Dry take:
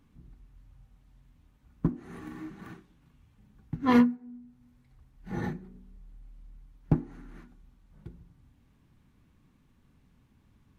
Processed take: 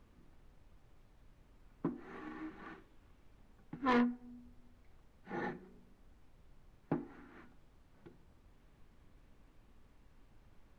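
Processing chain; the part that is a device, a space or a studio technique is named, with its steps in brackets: aircraft cabin announcement (BPF 350–3300 Hz; soft clip -23.5 dBFS, distortion -12 dB; brown noise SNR 16 dB); gain -1 dB

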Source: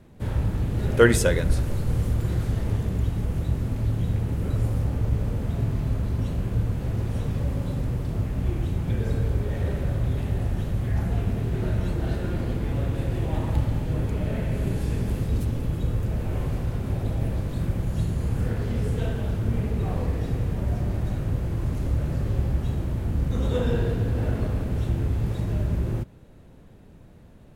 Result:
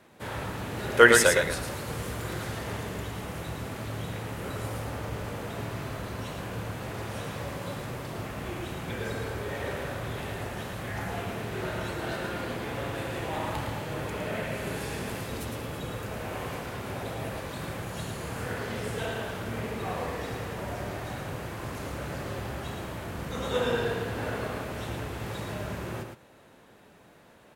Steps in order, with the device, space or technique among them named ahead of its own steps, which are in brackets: echo 0.11 s -5.5 dB; filter by subtraction (in parallel: LPF 1200 Hz 12 dB/oct + phase invert); on the sum: gain +3.5 dB

